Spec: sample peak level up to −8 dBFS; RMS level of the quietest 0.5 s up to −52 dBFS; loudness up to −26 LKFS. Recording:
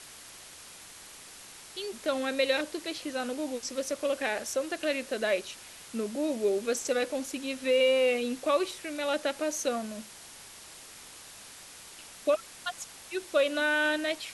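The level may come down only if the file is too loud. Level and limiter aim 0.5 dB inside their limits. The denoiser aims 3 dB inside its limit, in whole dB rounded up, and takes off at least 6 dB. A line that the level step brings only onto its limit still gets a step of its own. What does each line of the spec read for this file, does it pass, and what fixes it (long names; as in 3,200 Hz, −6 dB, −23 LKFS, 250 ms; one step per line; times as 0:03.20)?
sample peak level −14.0 dBFS: in spec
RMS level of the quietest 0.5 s −49 dBFS: out of spec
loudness −30.0 LKFS: in spec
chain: broadband denoise 6 dB, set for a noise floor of −49 dBFS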